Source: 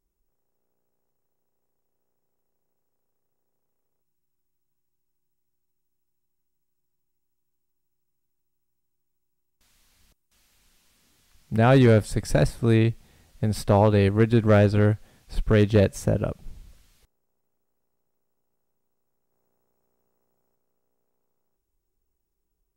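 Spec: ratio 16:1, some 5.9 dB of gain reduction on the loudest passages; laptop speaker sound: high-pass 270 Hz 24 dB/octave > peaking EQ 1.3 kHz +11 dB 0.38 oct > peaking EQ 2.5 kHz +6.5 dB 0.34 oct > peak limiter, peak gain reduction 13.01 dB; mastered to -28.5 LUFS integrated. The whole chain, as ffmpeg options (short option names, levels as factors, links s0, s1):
-af "acompressor=threshold=0.126:ratio=16,highpass=f=270:w=0.5412,highpass=f=270:w=1.3066,equalizer=f=1300:t=o:w=0.38:g=11,equalizer=f=2500:t=o:w=0.34:g=6.5,volume=2.24,alimiter=limit=0.15:level=0:latency=1"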